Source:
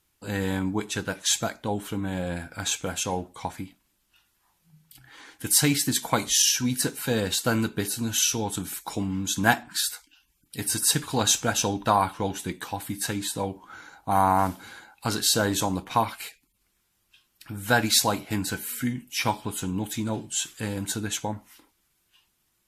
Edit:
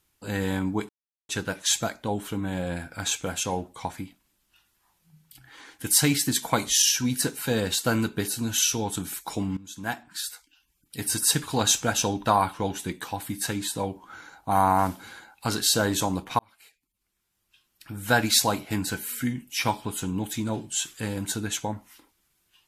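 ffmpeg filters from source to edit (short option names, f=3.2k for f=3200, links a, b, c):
-filter_complex "[0:a]asplit=4[a][b][c][d];[a]atrim=end=0.89,asetpts=PTS-STARTPTS,afade=t=out:st=0.886:d=0.004:c=hsin,apad=pad_dur=0.4[e];[b]atrim=start=0.89:end=9.17,asetpts=PTS-STARTPTS,afade=t=in:d=0.004:c=hsin,afade=t=out:st=8.276:d=0.004:c=hsin:silence=0.125893[f];[c]atrim=start=9.17:end=15.99,asetpts=PTS-STARTPTS,afade=t=in:d=1.57:silence=0.125893,afade=t=out:st=6.816:d=0.004:c=hsin[g];[d]atrim=start=15.99,asetpts=PTS-STARTPTS,afade=t=in:d=1.72[h];[e][f][g][h]concat=n=4:v=0:a=1"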